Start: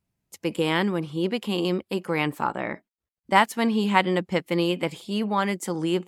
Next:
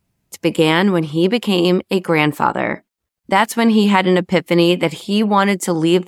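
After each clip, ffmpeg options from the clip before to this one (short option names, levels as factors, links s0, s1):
-af "alimiter=level_in=3.76:limit=0.891:release=50:level=0:latency=1,volume=0.891"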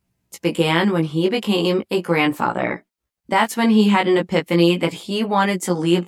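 -af "flanger=delay=16.5:depth=2.5:speed=0.37"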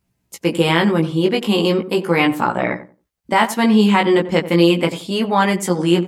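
-filter_complex "[0:a]asplit=2[s0][s1];[s1]adelay=90,lowpass=f=1000:p=1,volume=0.251,asplit=2[s2][s3];[s3]adelay=90,lowpass=f=1000:p=1,volume=0.22,asplit=2[s4][s5];[s5]adelay=90,lowpass=f=1000:p=1,volume=0.22[s6];[s0][s2][s4][s6]amix=inputs=4:normalize=0,volume=1.26"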